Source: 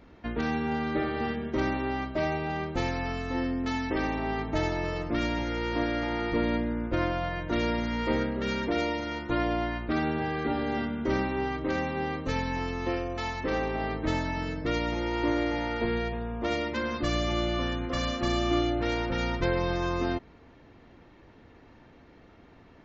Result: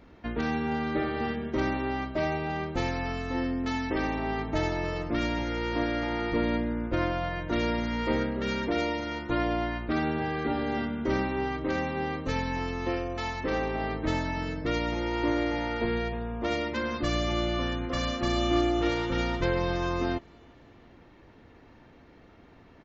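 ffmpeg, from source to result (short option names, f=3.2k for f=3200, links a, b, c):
-filter_complex "[0:a]asplit=2[a][b];[b]afade=t=in:st=18.03:d=0.01,afade=t=out:st=18.55:d=0.01,aecho=0:1:330|660|990|1320|1650|1980|2310:0.421697|0.231933|0.127563|0.0701598|0.0385879|0.0212233|0.0116728[c];[a][c]amix=inputs=2:normalize=0"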